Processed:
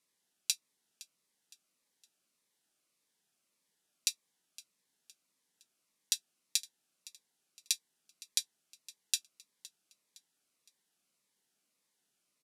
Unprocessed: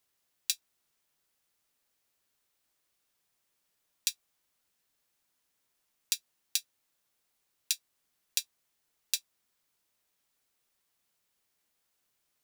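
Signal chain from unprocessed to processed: low-pass 12 kHz 24 dB/octave; resonant low shelf 120 Hz -13 dB, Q 1.5; feedback delay 513 ms, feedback 42%, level -20 dB; Shepard-style phaser falling 1.7 Hz

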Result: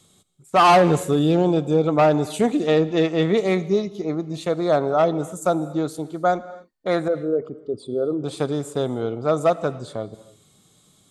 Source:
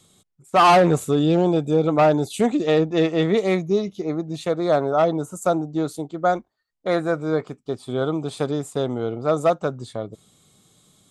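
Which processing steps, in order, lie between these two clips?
7.08–8.24 s: resonances exaggerated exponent 2; on a send: reverberation, pre-delay 3 ms, DRR 16 dB

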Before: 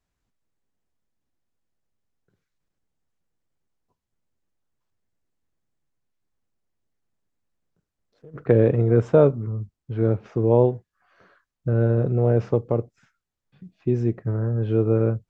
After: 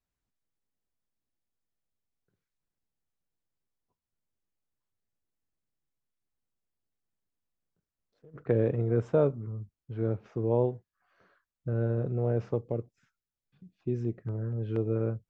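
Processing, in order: 12.62–14.96 s: LFO notch saw down 4.2 Hz 520–2300 Hz; trim -9 dB

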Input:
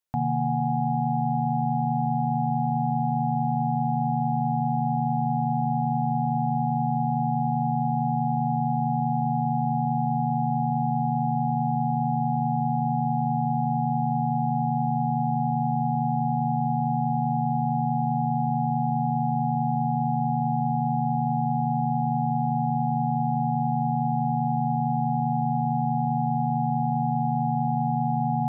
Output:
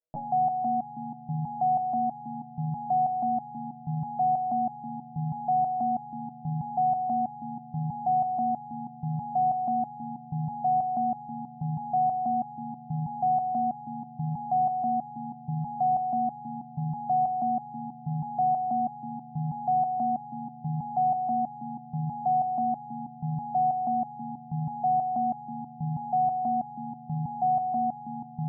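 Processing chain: resonant low-pass 570 Hz, resonance Q 6.2; peaking EQ 90 Hz -13.5 dB 0.6 oct; resonator arpeggio 6.2 Hz 160–430 Hz; trim +6.5 dB

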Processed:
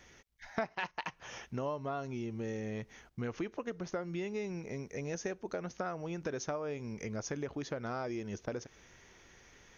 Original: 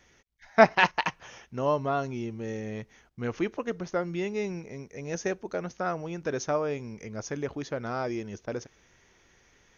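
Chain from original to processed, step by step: compression 5:1, threshold -38 dBFS, peak gain reduction 23.5 dB; trim +2.5 dB

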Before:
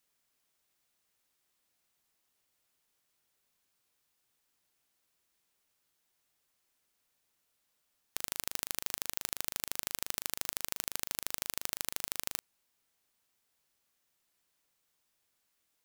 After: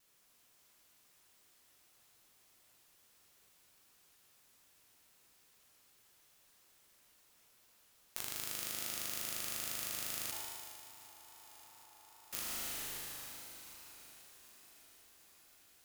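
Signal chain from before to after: peak limiter -12 dBFS, peak gain reduction 7.5 dB; plate-style reverb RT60 4.1 s, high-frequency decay 0.95×, DRR -3 dB; compression 4:1, threshold -42 dBFS, peak gain reduction 7.5 dB; 10.31–12.33 s: band-pass filter 880 Hz, Q 11; shuffle delay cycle 764 ms, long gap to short 3:1, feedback 63%, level -17 dB; vibrato 2.4 Hz 43 cents; decay stretcher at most 25 dB/s; trim +6 dB

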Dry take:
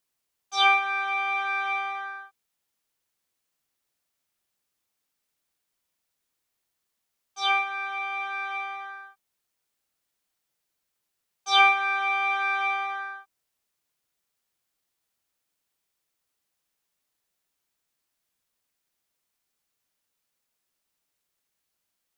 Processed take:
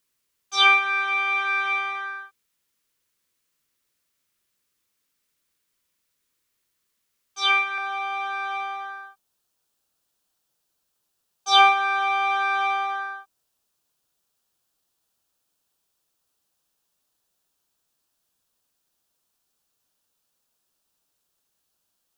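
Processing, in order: peaking EQ 750 Hz -9.5 dB 0.44 oct, from 7.78 s 2.1 kHz; trim +5 dB

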